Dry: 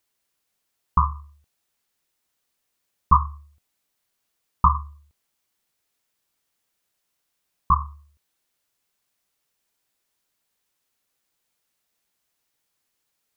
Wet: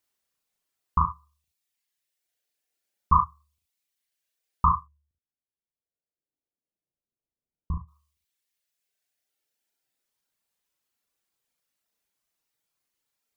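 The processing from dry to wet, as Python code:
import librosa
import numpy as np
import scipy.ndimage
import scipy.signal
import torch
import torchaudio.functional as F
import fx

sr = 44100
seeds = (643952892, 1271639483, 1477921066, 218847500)

y = fx.dereverb_blind(x, sr, rt60_s=1.7)
y = fx.gaussian_blur(y, sr, sigma=15.0, at=(4.79, 7.87), fade=0.02)
y = fx.room_early_taps(y, sr, ms=(37, 72), db=(-3.5, -8.0))
y = F.gain(torch.from_numpy(y), -4.5).numpy()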